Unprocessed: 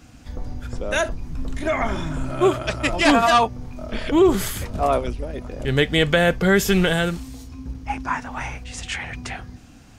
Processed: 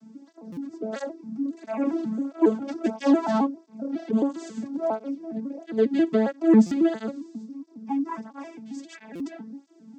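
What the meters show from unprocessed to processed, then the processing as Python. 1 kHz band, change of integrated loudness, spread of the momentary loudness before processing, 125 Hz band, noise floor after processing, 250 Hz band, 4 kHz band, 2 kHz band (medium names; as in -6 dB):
-10.5 dB, -4.5 dB, 17 LU, under -10 dB, -54 dBFS, +1.0 dB, under -20 dB, -18.5 dB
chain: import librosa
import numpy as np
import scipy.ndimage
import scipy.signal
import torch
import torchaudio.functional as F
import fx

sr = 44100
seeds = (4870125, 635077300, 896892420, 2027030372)

y = fx.vocoder_arp(x, sr, chord='major triad', root=57, every_ms=136)
y = fx.curve_eq(y, sr, hz=(190.0, 2800.0, 5100.0), db=(0, -15, -4))
y = 10.0 ** (-12.5 / 20.0) * np.tanh(y / 10.0 ** (-12.5 / 20.0))
y = fx.buffer_glitch(y, sr, at_s=(0.52, 6.66, 9.15), block=256, repeats=8)
y = fx.flanger_cancel(y, sr, hz=1.5, depth_ms=2.2)
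y = y * librosa.db_to_amplitude(4.5)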